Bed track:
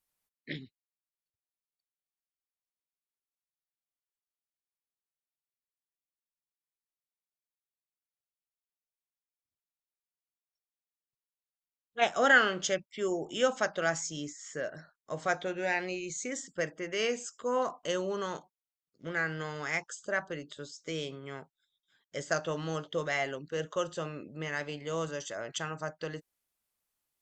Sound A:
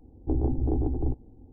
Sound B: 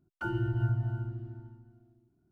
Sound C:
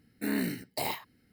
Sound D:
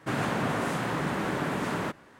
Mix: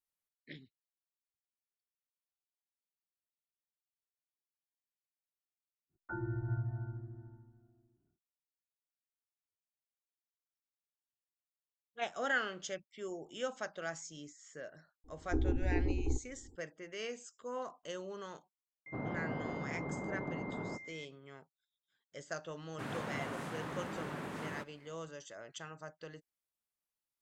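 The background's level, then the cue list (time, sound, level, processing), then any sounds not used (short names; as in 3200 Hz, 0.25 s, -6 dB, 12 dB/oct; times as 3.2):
bed track -11 dB
5.88 add B -6.5 dB, fades 0.10 s + elliptic low-pass 1800 Hz
15.04 add A -5 dB + fixed phaser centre 640 Hz, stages 6
18.86 add D -9.5 dB + pulse-width modulation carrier 2100 Hz
22.72 add D -12.5 dB
not used: C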